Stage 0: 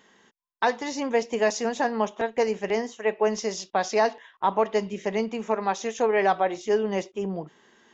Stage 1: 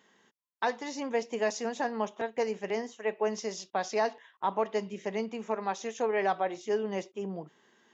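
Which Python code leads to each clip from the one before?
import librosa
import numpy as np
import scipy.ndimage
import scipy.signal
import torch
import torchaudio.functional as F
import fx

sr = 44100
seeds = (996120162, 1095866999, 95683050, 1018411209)

y = scipy.signal.sosfilt(scipy.signal.butter(2, 85.0, 'highpass', fs=sr, output='sos'), x)
y = F.gain(torch.from_numpy(y), -6.5).numpy()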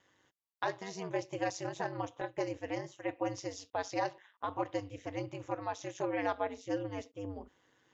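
y = x * np.sin(2.0 * np.pi * 97.0 * np.arange(len(x)) / sr)
y = F.gain(torch.from_numpy(y), -2.5).numpy()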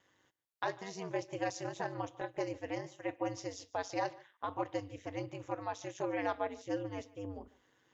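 y = x + 10.0 ** (-22.0 / 20.0) * np.pad(x, (int(147 * sr / 1000.0), 0))[:len(x)]
y = F.gain(torch.from_numpy(y), -1.5).numpy()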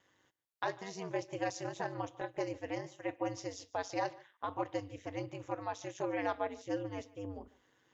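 y = x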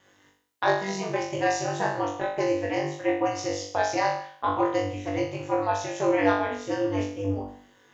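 y = fx.room_flutter(x, sr, wall_m=3.5, rt60_s=0.54)
y = F.gain(torch.from_numpy(y), 8.5).numpy()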